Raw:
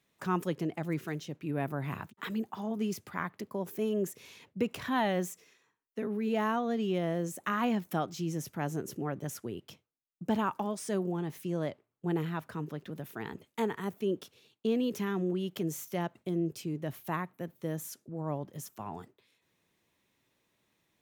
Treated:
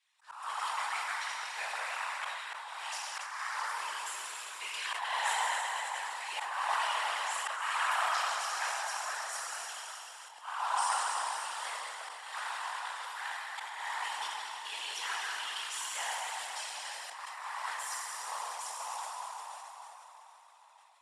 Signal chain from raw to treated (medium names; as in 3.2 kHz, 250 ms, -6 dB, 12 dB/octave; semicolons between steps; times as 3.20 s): block-companded coder 5-bit; treble shelf 6.6 kHz -3.5 dB; in parallel at -8.5 dB: bit crusher 7-bit; on the sum: elliptic high-pass 860 Hz, stop band 70 dB; treble shelf 2.6 kHz +7.5 dB; plate-style reverb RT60 4.6 s, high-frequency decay 0.8×, pre-delay 0 ms, DRR -7 dB; whisper effect; steep low-pass 10 kHz 36 dB/octave; slow attack 355 ms; band-stop 6.3 kHz, Q 9.2; on a send: echo whose repeats swap between lows and highs 143 ms, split 1.2 kHz, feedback 55%, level -9 dB; on the sum: decay stretcher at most 31 dB/s; trim -4.5 dB